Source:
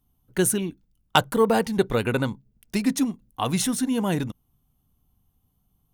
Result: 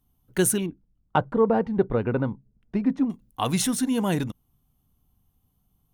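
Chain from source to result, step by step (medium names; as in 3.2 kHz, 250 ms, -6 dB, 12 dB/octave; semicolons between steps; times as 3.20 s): 0.66–3.10 s: Bessel low-pass 980 Hz, order 2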